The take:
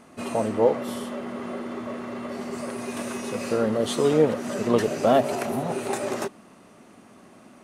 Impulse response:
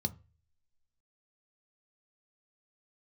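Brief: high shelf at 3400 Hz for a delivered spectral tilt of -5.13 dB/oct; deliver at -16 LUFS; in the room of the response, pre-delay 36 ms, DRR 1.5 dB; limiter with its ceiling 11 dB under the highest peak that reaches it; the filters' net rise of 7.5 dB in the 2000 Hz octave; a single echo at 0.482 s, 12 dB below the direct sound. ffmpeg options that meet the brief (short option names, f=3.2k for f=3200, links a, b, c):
-filter_complex "[0:a]equalizer=f=2k:t=o:g=7,highshelf=f=3.4k:g=8,alimiter=limit=-16dB:level=0:latency=1,aecho=1:1:482:0.251,asplit=2[a][b];[1:a]atrim=start_sample=2205,adelay=36[c];[b][c]afir=irnorm=-1:irlink=0,volume=-3dB[d];[a][d]amix=inputs=2:normalize=0,volume=6dB"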